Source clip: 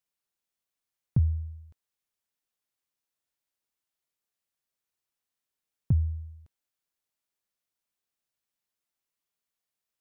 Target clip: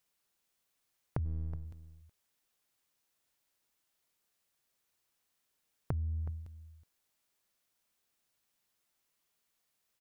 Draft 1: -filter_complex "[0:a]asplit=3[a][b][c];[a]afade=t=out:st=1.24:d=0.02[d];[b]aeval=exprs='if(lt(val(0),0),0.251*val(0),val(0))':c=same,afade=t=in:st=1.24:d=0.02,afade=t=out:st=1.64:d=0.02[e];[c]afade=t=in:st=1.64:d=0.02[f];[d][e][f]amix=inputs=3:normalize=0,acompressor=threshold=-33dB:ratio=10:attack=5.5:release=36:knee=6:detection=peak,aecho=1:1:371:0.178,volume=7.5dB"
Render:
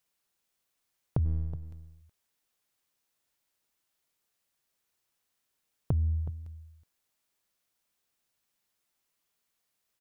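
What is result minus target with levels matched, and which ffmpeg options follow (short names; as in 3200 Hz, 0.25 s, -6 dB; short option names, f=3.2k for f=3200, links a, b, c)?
compressor: peak gain reduction -7.5 dB
-filter_complex "[0:a]asplit=3[a][b][c];[a]afade=t=out:st=1.24:d=0.02[d];[b]aeval=exprs='if(lt(val(0),0),0.251*val(0),val(0))':c=same,afade=t=in:st=1.24:d=0.02,afade=t=out:st=1.64:d=0.02[e];[c]afade=t=in:st=1.64:d=0.02[f];[d][e][f]amix=inputs=3:normalize=0,acompressor=threshold=-41.5dB:ratio=10:attack=5.5:release=36:knee=6:detection=peak,aecho=1:1:371:0.178,volume=7.5dB"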